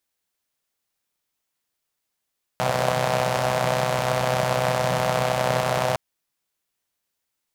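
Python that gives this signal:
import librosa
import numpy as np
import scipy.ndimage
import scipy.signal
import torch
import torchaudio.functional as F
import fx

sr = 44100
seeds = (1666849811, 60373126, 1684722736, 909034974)

y = fx.engine_four(sr, seeds[0], length_s=3.36, rpm=3800, resonances_hz=(160.0, 600.0))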